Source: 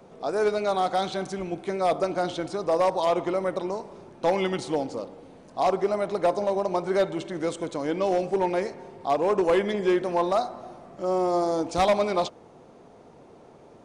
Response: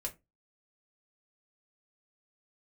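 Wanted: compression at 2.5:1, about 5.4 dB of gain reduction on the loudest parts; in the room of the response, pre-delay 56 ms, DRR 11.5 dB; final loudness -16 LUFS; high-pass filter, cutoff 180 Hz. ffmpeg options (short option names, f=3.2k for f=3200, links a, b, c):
-filter_complex "[0:a]highpass=180,acompressor=threshold=-26dB:ratio=2.5,asplit=2[a][b];[1:a]atrim=start_sample=2205,adelay=56[c];[b][c]afir=irnorm=-1:irlink=0,volume=-11.5dB[d];[a][d]amix=inputs=2:normalize=0,volume=14dB"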